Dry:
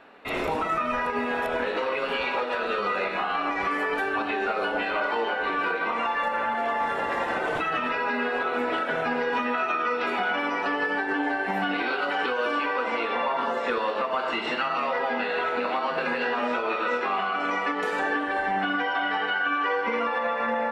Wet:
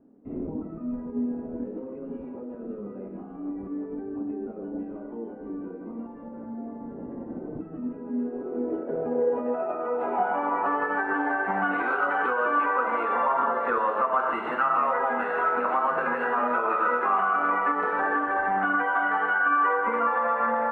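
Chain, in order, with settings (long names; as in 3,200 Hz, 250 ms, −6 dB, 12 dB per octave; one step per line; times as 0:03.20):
bad sample-rate conversion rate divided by 4×, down none, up hold
low-pass filter sweep 260 Hz → 1,300 Hz, 0:08.05–0:11.00
level −2 dB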